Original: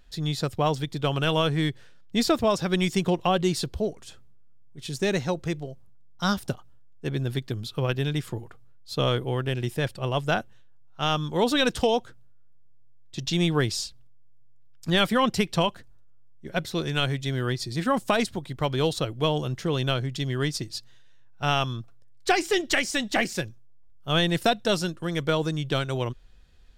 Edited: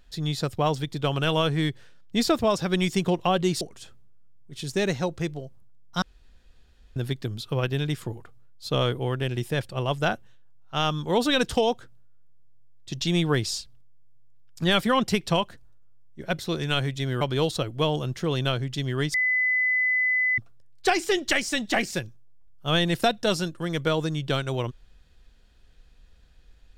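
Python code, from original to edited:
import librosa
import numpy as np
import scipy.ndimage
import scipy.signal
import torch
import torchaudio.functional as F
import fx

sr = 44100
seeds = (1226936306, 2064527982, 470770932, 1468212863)

y = fx.edit(x, sr, fx.cut(start_s=3.61, length_s=0.26),
    fx.room_tone_fill(start_s=6.28, length_s=0.94),
    fx.cut(start_s=17.47, length_s=1.16),
    fx.bleep(start_s=20.56, length_s=1.24, hz=2010.0, db=-20.0), tone=tone)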